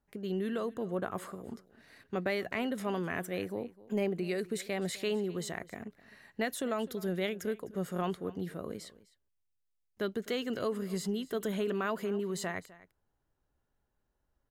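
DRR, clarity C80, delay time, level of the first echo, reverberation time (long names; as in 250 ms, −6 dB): no reverb audible, no reverb audible, 255 ms, −19.5 dB, no reverb audible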